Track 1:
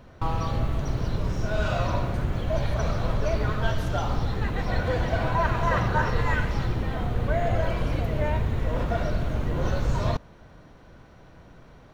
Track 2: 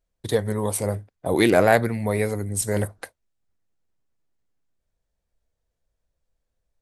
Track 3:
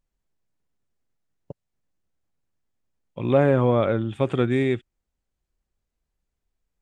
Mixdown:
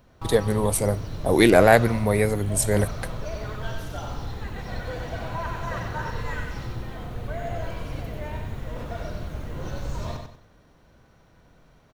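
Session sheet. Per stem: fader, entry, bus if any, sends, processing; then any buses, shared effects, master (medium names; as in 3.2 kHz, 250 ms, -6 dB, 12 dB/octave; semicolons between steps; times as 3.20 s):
-8.0 dB, 0.00 s, no send, echo send -5.5 dB, treble shelf 5.9 kHz +10.5 dB
+2.0 dB, 0.00 s, no send, no echo send, none
mute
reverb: none
echo: feedback delay 94 ms, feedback 33%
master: none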